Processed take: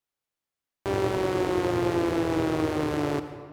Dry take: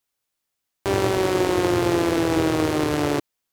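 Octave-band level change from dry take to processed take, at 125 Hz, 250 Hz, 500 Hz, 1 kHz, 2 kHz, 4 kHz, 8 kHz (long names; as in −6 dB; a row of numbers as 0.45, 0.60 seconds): −4.5, −4.5, −4.5, −5.0, −6.5, −8.5, −10.5 decibels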